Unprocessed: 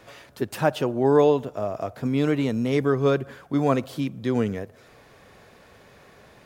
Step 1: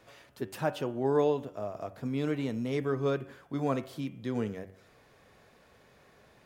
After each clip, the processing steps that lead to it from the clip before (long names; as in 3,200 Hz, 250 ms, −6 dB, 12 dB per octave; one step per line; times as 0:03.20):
hum removal 95.42 Hz, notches 36
level −8.5 dB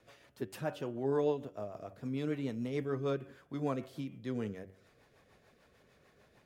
rotating-speaker cabinet horn 6.7 Hz
level −3 dB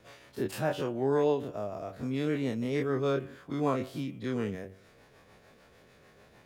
every bin's largest magnitude spread in time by 60 ms
level +3 dB